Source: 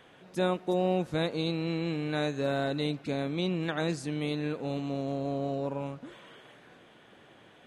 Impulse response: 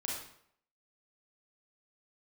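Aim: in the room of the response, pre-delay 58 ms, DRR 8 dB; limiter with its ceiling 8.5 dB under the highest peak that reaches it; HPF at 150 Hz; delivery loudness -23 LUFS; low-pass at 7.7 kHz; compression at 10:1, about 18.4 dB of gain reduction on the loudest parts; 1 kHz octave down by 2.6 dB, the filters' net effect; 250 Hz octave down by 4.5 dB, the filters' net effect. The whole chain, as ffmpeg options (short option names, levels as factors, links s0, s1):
-filter_complex "[0:a]highpass=150,lowpass=7700,equalizer=f=250:t=o:g=-5.5,equalizer=f=1000:t=o:g=-3.5,acompressor=threshold=0.00562:ratio=10,alimiter=level_in=8.91:limit=0.0631:level=0:latency=1,volume=0.112,asplit=2[s0][s1];[1:a]atrim=start_sample=2205,adelay=58[s2];[s1][s2]afir=irnorm=-1:irlink=0,volume=0.316[s3];[s0][s3]amix=inputs=2:normalize=0,volume=29.9"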